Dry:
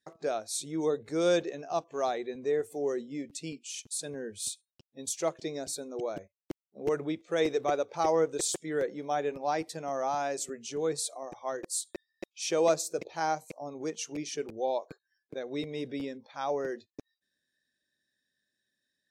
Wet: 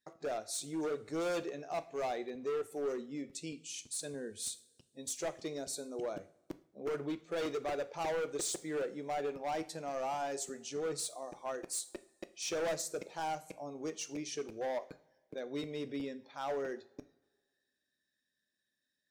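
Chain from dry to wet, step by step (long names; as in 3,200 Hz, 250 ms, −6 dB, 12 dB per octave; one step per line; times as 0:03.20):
hard clipping −28.5 dBFS, distortion −9 dB
coupled-rooms reverb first 0.43 s, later 1.7 s, from −20 dB, DRR 11 dB
level −4 dB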